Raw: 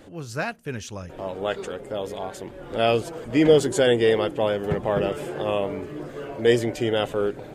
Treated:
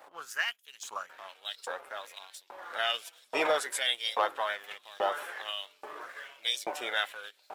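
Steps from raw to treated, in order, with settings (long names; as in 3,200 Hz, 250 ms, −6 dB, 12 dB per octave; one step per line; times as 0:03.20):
graphic EQ with 10 bands 125 Hz +4 dB, 250 Hz +5 dB, 2,000 Hz −7 dB, 4,000 Hz −8 dB, 8,000 Hz −7 dB
formants moved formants +2 semitones
auto-filter high-pass saw up 1.2 Hz 880–4,900 Hz
leveller curve on the samples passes 1
low-shelf EQ 450 Hz −9.5 dB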